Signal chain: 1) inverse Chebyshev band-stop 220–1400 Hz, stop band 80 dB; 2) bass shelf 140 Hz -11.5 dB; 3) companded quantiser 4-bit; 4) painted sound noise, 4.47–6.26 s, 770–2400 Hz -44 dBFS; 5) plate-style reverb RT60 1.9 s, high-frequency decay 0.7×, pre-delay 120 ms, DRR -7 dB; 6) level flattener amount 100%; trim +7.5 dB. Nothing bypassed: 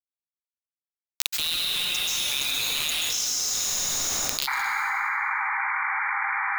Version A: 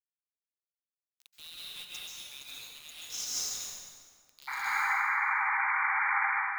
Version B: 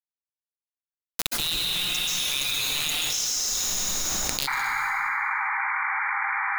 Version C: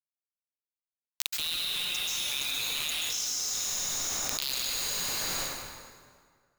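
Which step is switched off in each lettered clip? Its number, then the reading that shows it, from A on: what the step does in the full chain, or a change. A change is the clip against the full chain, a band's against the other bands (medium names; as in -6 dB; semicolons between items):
6, crest factor change -8.0 dB; 2, 125 Hz band +5.0 dB; 4, 1 kHz band -12.5 dB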